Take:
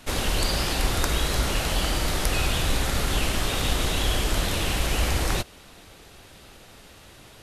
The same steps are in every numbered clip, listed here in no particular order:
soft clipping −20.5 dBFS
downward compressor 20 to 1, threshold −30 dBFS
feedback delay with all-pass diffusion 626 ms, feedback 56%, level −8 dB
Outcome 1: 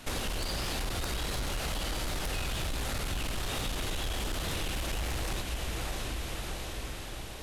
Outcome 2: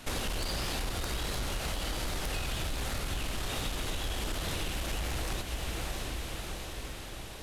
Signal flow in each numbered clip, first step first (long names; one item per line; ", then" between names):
feedback delay with all-pass diffusion, then soft clipping, then downward compressor
soft clipping, then feedback delay with all-pass diffusion, then downward compressor